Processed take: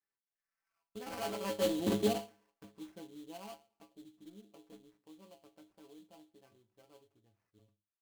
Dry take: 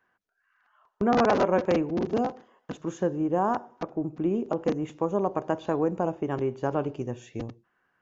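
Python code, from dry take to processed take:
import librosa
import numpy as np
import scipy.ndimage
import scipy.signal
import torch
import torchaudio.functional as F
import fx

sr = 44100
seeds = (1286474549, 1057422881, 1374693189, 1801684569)

y = fx.doppler_pass(x, sr, speed_mps=19, closest_m=2.0, pass_at_s=1.91)
y = fx.stiff_resonator(y, sr, f0_hz=100.0, decay_s=0.29, stiffness=0.008)
y = fx.sample_hold(y, sr, seeds[0], rate_hz=3700.0, jitter_pct=20)
y = y * 10.0 ** (8.5 / 20.0)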